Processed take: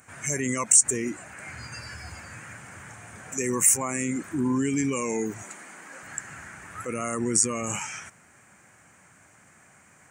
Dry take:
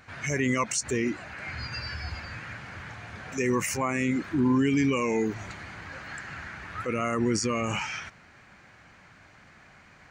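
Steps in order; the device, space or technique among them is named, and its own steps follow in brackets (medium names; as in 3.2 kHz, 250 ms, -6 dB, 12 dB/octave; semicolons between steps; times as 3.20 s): 5.42–6.03 s: high-pass 210 Hz 24 dB/octave; budget condenser microphone (high-pass 94 Hz; resonant high shelf 6 kHz +13 dB, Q 3); trim -2 dB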